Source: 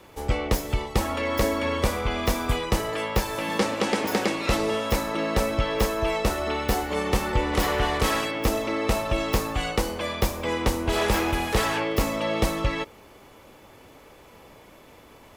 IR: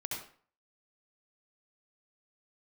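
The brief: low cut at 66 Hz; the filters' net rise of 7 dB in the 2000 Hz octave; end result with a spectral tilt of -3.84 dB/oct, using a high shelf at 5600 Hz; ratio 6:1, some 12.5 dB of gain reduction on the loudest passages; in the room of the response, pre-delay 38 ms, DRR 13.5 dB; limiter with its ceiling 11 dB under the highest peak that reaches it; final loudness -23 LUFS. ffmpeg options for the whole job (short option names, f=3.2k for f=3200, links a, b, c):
-filter_complex "[0:a]highpass=66,equalizer=f=2k:t=o:g=7.5,highshelf=f=5.6k:g=6.5,acompressor=threshold=-32dB:ratio=6,alimiter=level_in=2.5dB:limit=-24dB:level=0:latency=1,volume=-2.5dB,asplit=2[a][b];[1:a]atrim=start_sample=2205,adelay=38[c];[b][c]afir=irnorm=-1:irlink=0,volume=-15dB[d];[a][d]amix=inputs=2:normalize=0,volume=12.5dB"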